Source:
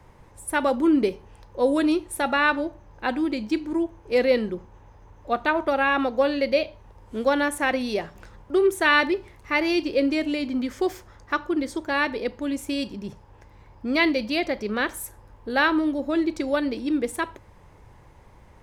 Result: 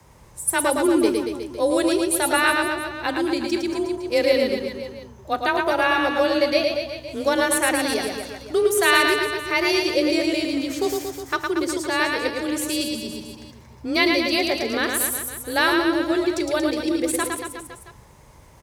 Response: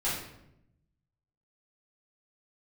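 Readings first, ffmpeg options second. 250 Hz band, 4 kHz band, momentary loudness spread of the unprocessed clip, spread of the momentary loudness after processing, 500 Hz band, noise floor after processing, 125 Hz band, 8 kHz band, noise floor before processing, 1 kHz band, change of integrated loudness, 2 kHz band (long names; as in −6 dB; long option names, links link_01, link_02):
+1.0 dB, +7.5 dB, 11 LU, 10 LU, +3.0 dB, −48 dBFS, +3.0 dB, +13.5 dB, −52 dBFS, +2.5 dB, +2.5 dB, +3.0 dB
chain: -af "afreqshift=26,bass=frequency=250:gain=-1,treble=frequency=4000:gain=12,aecho=1:1:110|231|364.1|510.5|671.6:0.631|0.398|0.251|0.158|0.1"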